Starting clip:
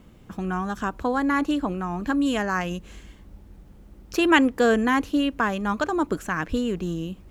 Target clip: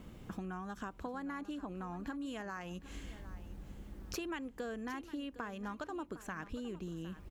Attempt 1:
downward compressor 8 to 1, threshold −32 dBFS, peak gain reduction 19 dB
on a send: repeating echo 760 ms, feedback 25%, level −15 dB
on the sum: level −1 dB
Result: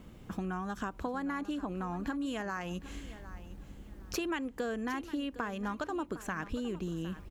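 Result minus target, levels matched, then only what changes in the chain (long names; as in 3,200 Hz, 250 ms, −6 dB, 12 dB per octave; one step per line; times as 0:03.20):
downward compressor: peak gain reduction −6 dB
change: downward compressor 8 to 1, threshold −39 dBFS, peak gain reduction 25.5 dB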